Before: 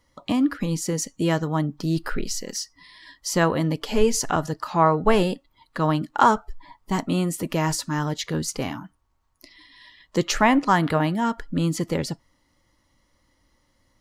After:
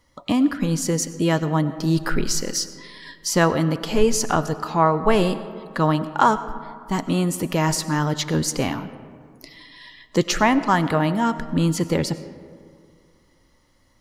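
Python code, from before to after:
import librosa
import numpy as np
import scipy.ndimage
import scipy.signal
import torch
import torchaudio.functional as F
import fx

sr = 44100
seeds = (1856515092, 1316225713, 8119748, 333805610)

p1 = fx.rider(x, sr, range_db=10, speed_s=0.5)
p2 = x + F.gain(torch.from_numpy(p1), 2.0).numpy()
p3 = fx.rev_freeverb(p2, sr, rt60_s=2.2, hf_ratio=0.4, predelay_ms=55, drr_db=13.5)
y = F.gain(torch.from_numpy(p3), -5.0).numpy()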